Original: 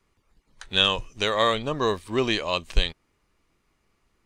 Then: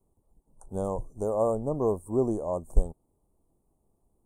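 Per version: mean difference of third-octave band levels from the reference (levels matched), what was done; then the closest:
10.5 dB: elliptic band-stop filter 810–8,600 Hz, stop band 50 dB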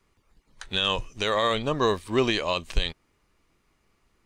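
2.0 dB: brickwall limiter −14 dBFS, peak gain reduction 9.5 dB
level +1.5 dB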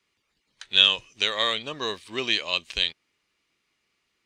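5.5 dB: meter weighting curve D
level −7.5 dB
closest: second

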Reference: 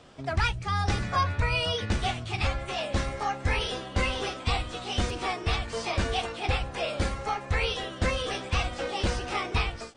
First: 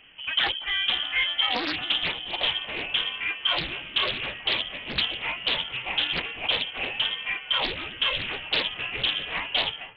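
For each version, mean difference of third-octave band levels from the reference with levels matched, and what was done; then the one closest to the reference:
11.5 dB: feedback echo with a high-pass in the loop 232 ms, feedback 63%, level −17 dB
voice inversion scrambler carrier 3,200 Hz
highs frequency-modulated by the lows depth 0.65 ms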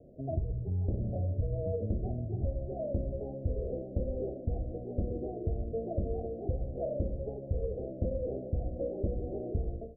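19.0 dB: Butterworth low-pass 660 Hz 96 dB per octave
on a send: repeating echo 75 ms, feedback 50%, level −14.5 dB
on the sum: downward compressor 4 to 1, threshold −28 dBFS, peak gain reduction 6.5 dB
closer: first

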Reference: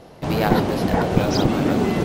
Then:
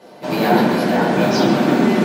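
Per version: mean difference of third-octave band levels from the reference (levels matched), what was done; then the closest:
3.5 dB: Chebyshev high-pass filter 190 Hz, order 3
surface crackle 36 per second −47 dBFS
on a send: feedback echo with a band-pass in the loop 135 ms, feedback 74%, band-pass 1,900 Hz, level −5 dB
on the sum: rectangular room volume 270 cubic metres, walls furnished, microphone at 4.9 metres
level −4.5 dB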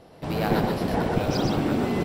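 1.5 dB: notch filter 6,500 Hz, Q 8.9
hard clipping −6.5 dBFS, distortion −28 dB
on a send: single-tap delay 122 ms −3 dB
on the sum: level −6.5 dB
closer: second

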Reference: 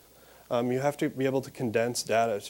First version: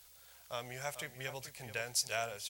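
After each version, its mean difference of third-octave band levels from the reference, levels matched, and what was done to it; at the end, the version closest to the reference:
8.0 dB: guitar amp tone stack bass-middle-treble 10-0-10
slap from a distant wall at 74 metres, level −11 dB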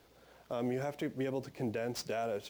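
3.0 dB: running median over 5 samples
brickwall limiter −22.5 dBFS, peak gain reduction 8.5 dB
level −4.5 dB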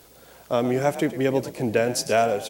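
1.5 dB: on a send: echo with shifted repeats 107 ms, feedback 36%, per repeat +42 Hz, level −14 dB
on the sum: level +5 dB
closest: third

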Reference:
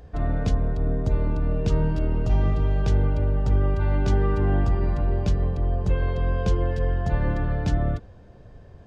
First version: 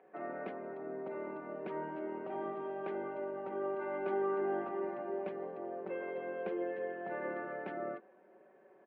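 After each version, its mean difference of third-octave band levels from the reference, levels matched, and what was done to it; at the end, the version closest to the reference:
8.0 dB: elliptic band-pass filter 300–2,300 Hz, stop band 60 dB
high-frequency loss of the air 82 metres
comb filter 5.3 ms, depth 74%
level −7.5 dB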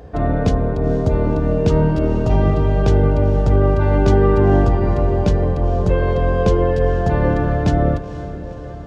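2.5 dB: high-pass filter 46 Hz
parametric band 480 Hz +7 dB 2.7 octaves
feedback delay with all-pass diffusion 488 ms, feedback 62%, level −14 dB
level +5.5 dB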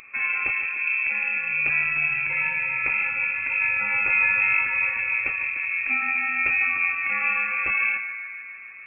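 16.0 dB: Butterworth high-pass 240 Hz 72 dB per octave
feedback echo with a band-pass in the loop 149 ms, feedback 79%, band-pass 910 Hz, level −8 dB
voice inversion scrambler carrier 2,900 Hz
level +8 dB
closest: second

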